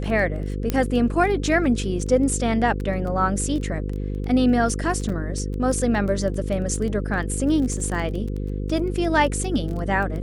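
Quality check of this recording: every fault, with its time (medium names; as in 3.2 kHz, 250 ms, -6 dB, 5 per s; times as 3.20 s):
buzz 50 Hz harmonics 10 -27 dBFS
crackle 13 per s -28 dBFS
0.70 s: pop -9 dBFS
5.09 s: dropout 4.4 ms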